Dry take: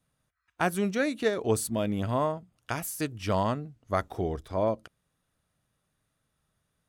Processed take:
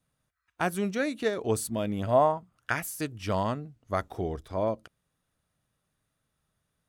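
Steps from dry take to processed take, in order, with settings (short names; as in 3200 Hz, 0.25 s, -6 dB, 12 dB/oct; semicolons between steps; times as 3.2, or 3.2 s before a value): 2.06–2.81 bell 560 Hz -> 2000 Hz +12.5 dB 0.67 oct; gain -1.5 dB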